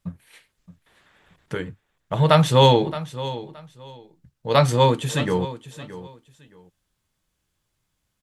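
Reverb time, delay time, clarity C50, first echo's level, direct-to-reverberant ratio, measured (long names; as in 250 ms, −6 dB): no reverb audible, 621 ms, no reverb audible, −15.0 dB, no reverb audible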